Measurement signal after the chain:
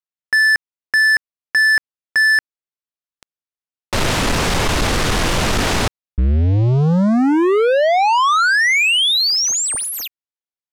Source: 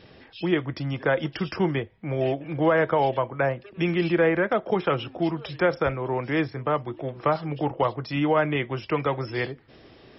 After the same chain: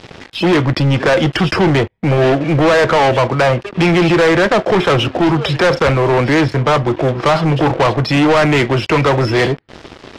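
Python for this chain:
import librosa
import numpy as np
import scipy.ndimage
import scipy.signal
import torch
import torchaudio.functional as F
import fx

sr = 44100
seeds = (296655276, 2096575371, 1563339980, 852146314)

y = fx.leveller(x, sr, passes=5)
y = fx.air_absorb(y, sr, metres=58.0)
y = y * librosa.db_to_amplitude(2.5)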